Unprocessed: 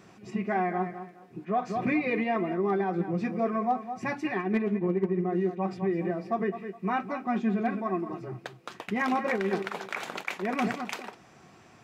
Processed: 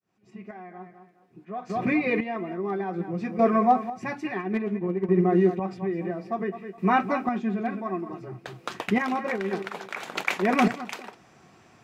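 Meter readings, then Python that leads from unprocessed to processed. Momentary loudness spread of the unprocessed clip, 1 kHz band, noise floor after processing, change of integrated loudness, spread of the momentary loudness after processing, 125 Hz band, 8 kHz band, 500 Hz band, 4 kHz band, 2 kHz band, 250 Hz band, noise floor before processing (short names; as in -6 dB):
9 LU, +3.5 dB, -57 dBFS, +3.5 dB, 17 LU, +3.0 dB, n/a, +2.5 dB, +3.5 dB, +2.5 dB, +2.5 dB, -55 dBFS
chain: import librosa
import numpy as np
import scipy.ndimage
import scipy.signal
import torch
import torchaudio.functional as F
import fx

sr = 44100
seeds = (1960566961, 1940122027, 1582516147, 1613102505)

y = fx.fade_in_head(x, sr, length_s=3.33)
y = fx.chopper(y, sr, hz=0.59, depth_pct=60, duty_pct=30)
y = F.gain(torch.from_numpy(y), 7.5).numpy()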